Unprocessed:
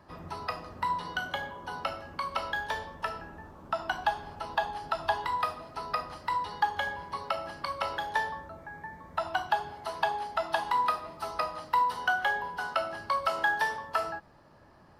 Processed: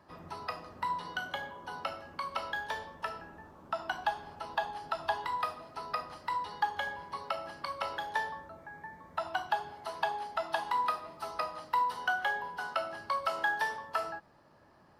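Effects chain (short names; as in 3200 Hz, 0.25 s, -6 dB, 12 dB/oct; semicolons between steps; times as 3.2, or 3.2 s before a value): low shelf 82 Hz -9.5 dB; gain -3.5 dB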